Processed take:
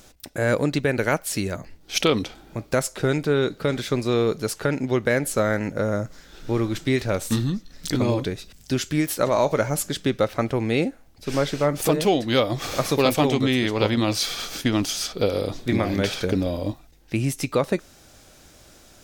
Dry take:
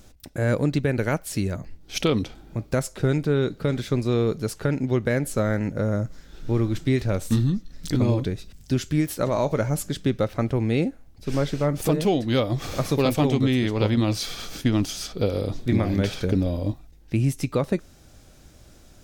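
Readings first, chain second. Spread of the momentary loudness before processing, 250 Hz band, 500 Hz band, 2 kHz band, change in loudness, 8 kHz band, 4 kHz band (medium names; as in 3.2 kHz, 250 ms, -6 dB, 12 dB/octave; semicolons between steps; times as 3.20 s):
7 LU, -0.5 dB, +2.5 dB, +5.0 dB, +1.0 dB, +5.5 dB, +5.5 dB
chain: bass shelf 270 Hz -11 dB; trim +5.5 dB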